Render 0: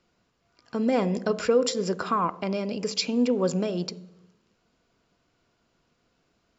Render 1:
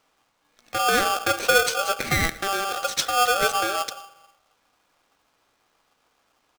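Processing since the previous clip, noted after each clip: echo 0.115 s -24 dB; polarity switched at an audio rate 980 Hz; gain +2.5 dB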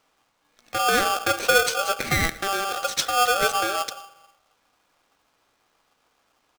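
nothing audible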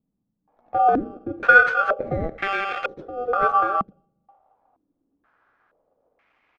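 stepped low-pass 2.1 Hz 200–2200 Hz; gain -2 dB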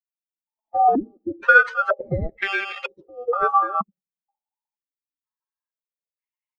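per-bin expansion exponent 2; in parallel at +1 dB: compressor, threshold -26 dBFS, peak gain reduction 15.5 dB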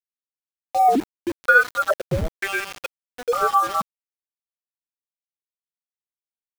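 in parallel at -6.5 dB: soft clip -19 dBFS, distortion -7 dB; on the sum: high shelf 2900 Hz -9 dB; sample gate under -26.5 dBFS; gain -1 dB

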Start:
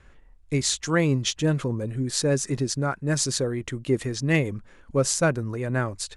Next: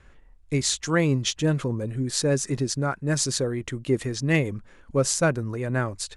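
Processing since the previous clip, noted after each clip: nothing audible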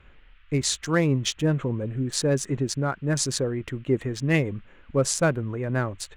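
Wiener smoothing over 9 samples; band noise 1200–3100 Hz -64 dBFS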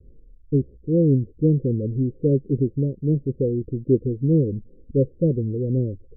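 steep low-pass 520 Hz 96 dB/oct; gain +5 dB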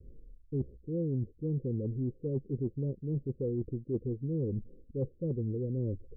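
dynamic EQ 290 Hz, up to -3 dB, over -34 dBFS, Q 6.5; reverse; compressor 6:1, threshold -28 dBFS, peak gain reduction 14.5 dB; reverse; gain -2.5 dB

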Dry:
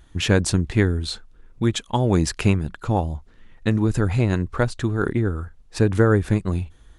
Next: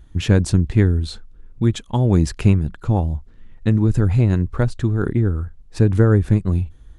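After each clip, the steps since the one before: low shelf 320 Hz +11 dB; gain -4.5 dB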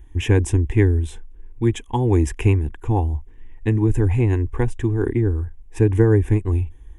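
fixed phaser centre 890 Hz, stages 8; gain +3 dB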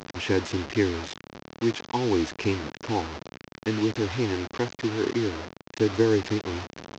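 delta modulation 32 kbps, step -23 dBFS; HPF 210 Hz 12 dB/oct; gain -3 dB

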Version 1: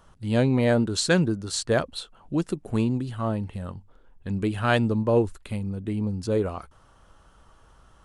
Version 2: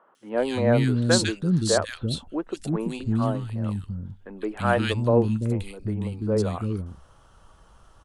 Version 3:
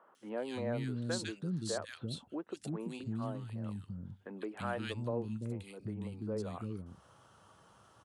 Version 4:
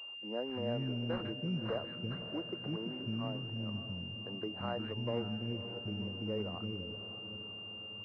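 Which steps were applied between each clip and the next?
three bands offset in time mids, highs, lows 0.15/0.34 s, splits 300/1900 Hz; gain +2 dB
HPF 100 Hz 24 dB/oct; compressor 2:1, threshold -39 dBFS, peak gain reduction 14 dB; gain -4 dB
diffused feedback echo 0.58 s, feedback 55%, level -11 dB; pulse-width modulation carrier 2800 Hz

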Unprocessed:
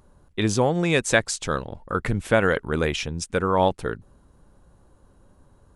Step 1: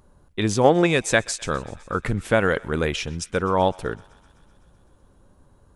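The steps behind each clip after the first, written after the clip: spectral gain 0.65–0.87, 210–3900 Hz +8 dB; thinning echo 0.127 s, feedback 77%, high-pass 720 Hz, level -23 dB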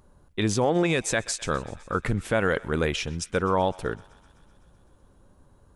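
limiter -11 dBFS, peak gain reduction 8.5 dB; gain -1.5 dB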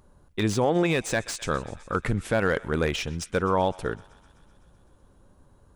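slew limiter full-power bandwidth 190 Hz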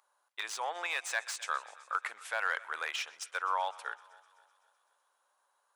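HPF 800 Hz 24 dB/oct; dynamic EQ 1400 Hz, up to +3 dB, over -39 dBFS, Q 0.83; darkening echo 0.262 s, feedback 46%, low-pass 2900 Hz, level -22 dB; gain -6 dB

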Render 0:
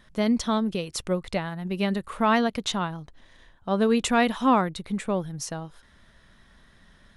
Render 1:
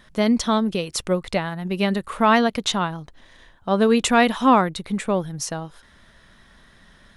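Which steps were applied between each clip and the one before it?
low shelf 210 Hz -3.5 dB; gain +5.5 dB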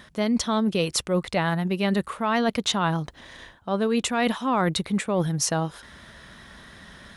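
HPF 52 Hz; reverse; compressor 12:1, threshold -27 dBFS, peak gain reduction 17 dB; reverse; gain +7 dB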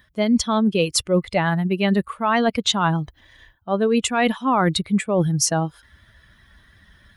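per-bin expansion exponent 1.5; gain +6.5 dB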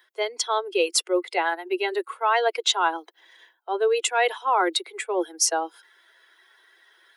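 steep high-pass 340 Hz 96 dB/oct; notch comb 600 Hz

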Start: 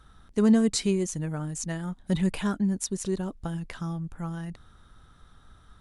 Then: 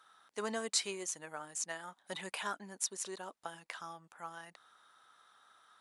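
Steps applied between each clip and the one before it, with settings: Chebyshev high-pass 820 Hz, order 2; gain -2 dB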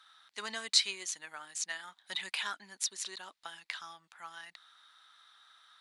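graphic EQ 125/250/500/2000/4000 Hz -11/-3/-8/+6/+12 dB; gain -2.5 dB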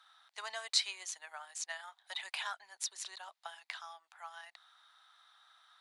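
ladder high-pass 600 Hz, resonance 50%; gain +5 dB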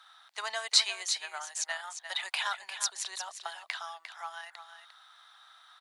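echo 0.351 s -9.5 dB; gain +7 dB

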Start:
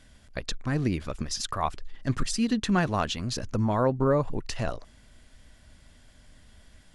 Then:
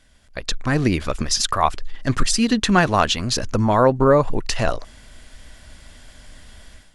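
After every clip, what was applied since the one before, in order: bell 140 Hz -5.5 dB 2.8 oct; AGC gain up to 12.5 dB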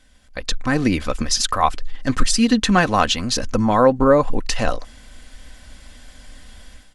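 comb 3.9 ms, depth 41%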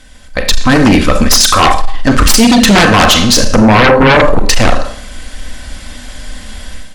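Schroeder reverb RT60 0.55 s, combs from 29 ms, DRR 6 dB; sine folder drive 12 dB, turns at -1.5 dBFS; gain -1 dB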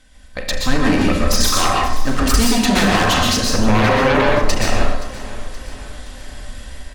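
feedback echo 0.523 s, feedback 53%, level -17 dB; plate-style reverb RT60 0.54 s, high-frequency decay 0.8×, pre-delay 0.11 s, DRR -1.5 dB; gain -12 dB

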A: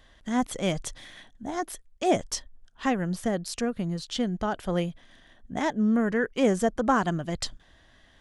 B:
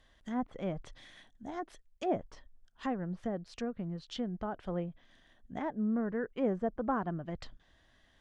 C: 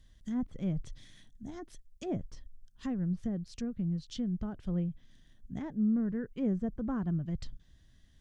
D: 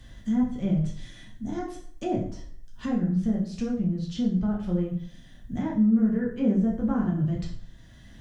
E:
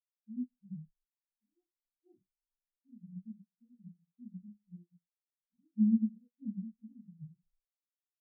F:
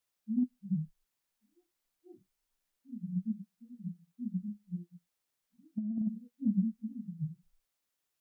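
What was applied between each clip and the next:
treble ducked by the level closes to 1300 Hz, closed at -24.5 dBFS; gain -8.5 dB
EQ curve 150 Hz 0 dB, 750 Hz -21 dB, 2900 Hz -13 dB, 6000 Hz -5 dB; gain +8.5 dB
harmonic-percussive split percussive -4 dB; plate-style reverb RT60 0.53 s, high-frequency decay 0.8×, DRR -4 dB; three-band squash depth 40%; gain +4.5 dB
spectral expander 4:1; gain -6 dB
negative-ratio compressor -36 dBFS, ratio -1; gain +6.5 dB

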